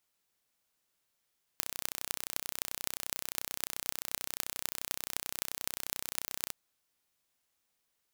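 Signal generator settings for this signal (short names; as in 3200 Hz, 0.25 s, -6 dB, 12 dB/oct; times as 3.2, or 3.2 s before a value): pulse train 31.4/s, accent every 8, -3.5 dBFS 4.91 s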